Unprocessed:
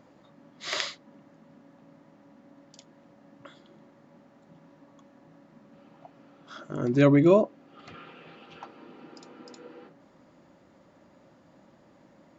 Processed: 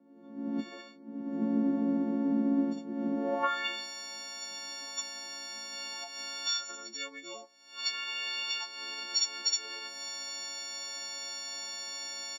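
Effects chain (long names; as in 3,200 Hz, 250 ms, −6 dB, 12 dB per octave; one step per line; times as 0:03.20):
every partial snapped to a pitch grid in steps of 4 semitones
camcorder AGC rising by 50 dB per second
band-pass filter sweep 250 Hz → 5,400 Hz, 0:03.13–0:03.87
Butterworth high-pass 190 Hz 48 dB per octave
far-end echo of a speakerphone 110 ms, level −28 dB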